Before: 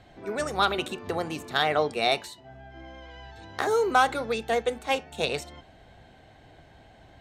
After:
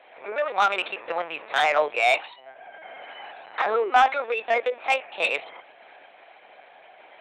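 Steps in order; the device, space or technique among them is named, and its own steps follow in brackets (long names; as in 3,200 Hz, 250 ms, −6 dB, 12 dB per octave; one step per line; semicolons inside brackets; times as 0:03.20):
talking toy (linear-prediction vocoder at 8 kHz pitch kept; high-pass filter 630 Hz 12 dB per octave; parametric band 2,400 Hz +11 dB 0.46 octaves; soft clipping −15.5 dBFS, distortion −15 dB)
parametric band 650 Hz +8 dB 2.6 octaves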